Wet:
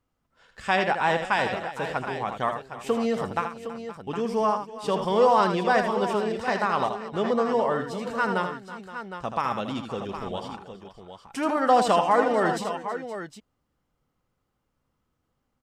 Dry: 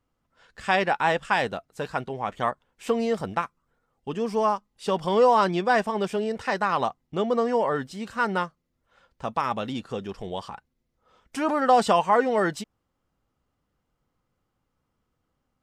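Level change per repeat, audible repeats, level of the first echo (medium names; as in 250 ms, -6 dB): no regular repeats, 4, -7.5 dB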